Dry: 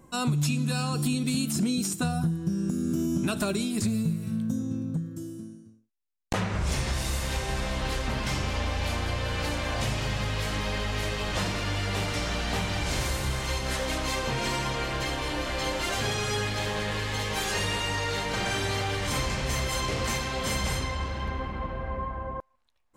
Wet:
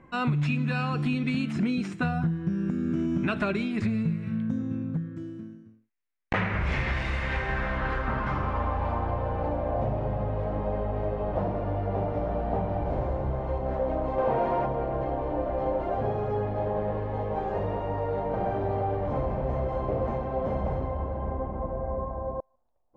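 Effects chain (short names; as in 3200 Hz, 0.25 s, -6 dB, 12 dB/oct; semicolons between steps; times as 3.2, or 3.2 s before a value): 14.18–14.66 overdrive pedal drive 21 dB, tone 4500 Hz, clips at -18.5 dBFS; low-pass sweep 2100 Hz -> 680 Hz, 7.16–9.69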